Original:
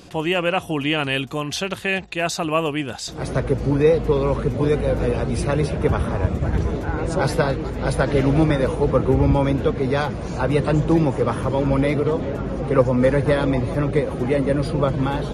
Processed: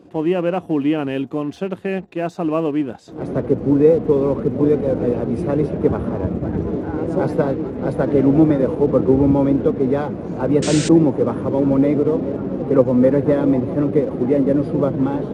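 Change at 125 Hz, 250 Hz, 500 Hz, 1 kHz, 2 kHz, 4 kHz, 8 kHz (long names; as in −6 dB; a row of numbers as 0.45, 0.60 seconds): −2.0, +5.5, +3.0, −2.5, −8.0, −7.5, −0.5 decibels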